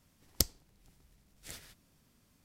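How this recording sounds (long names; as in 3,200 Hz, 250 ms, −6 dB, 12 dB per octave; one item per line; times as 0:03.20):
background noise floor −70 dBFS
spectral slope −1.5 dB per octave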